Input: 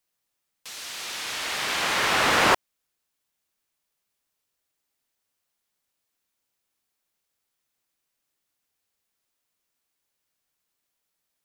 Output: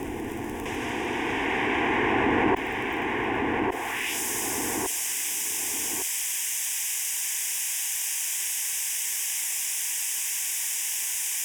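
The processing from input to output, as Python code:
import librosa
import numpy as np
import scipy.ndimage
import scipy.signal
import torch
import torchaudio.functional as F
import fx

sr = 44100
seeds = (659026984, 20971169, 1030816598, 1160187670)

p1 = fx.quant_dither(x, sr, seeds[0], bits=6, dither='triangular')
p2 = x + F.gain(torch.from_numpy(p1), -7.5).numpy()
p3 = fx.filter_sweep_bandpass(p2, sr, from_hz=210.0, to_hz=6100.0, start_s=3.6, end_s=4.2, q=1.2)
p4 = fx.dynamic_eq(p3, sr, hz=2400.0, q=0.76, threshold_db=-53.0, ratio=4.0, max_db=6)
p5 = p4 + fx.echo_feedback(p4, sr, ms=1158, feedback_pct=29, wet_db=-12, dry=0)
p6 = fx.dmg_crackle(p5, sr, seeds[1], per_s=19.0, level_db=-52.0)
p7 = fx.low_shelf(p6, sr, hz=79.0, db=8.5)
p8 = fx.fixed_phaser(p7, sr, hz=870.0, stages=8)
p9 = fx.env_flatten(p8, sr, amount_pct=70)
y = F.gain(torch.from_numpy(p9), 5.5).numpy()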